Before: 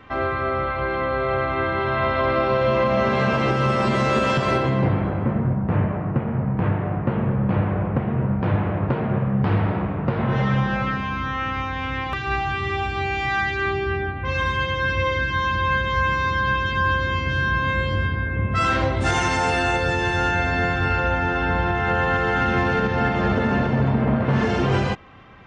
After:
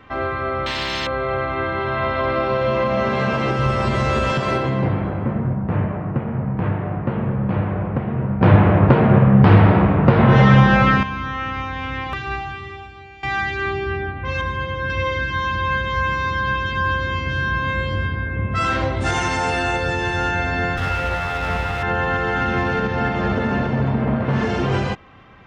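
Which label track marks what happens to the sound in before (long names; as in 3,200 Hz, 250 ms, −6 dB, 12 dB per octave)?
0.660000	1.070000	every bin compressed towards the loudest bin 10 to 1
3.590000	4.320000	low shelf with overshoot 120 Hz +10 dB, Q 1.5
8.410000	11.030000	clip gain +9.5 dB
12.180000	13.230000	fade out quadratic, to −18 dB
14.410000	14.900000	high-shelf EQ 2,100 Hz −9 dB
20.770000	21.830000	lower of the sound and its delayed copy delay 1.5 ms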